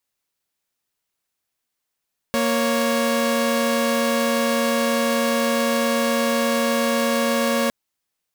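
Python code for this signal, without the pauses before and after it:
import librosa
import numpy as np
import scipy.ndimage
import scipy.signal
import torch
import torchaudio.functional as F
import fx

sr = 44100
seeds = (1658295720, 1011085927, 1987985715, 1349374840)

y = fx.chord(sr, length_s=5.36, notes=(58, 73), wave='saw', level_db=-18.5)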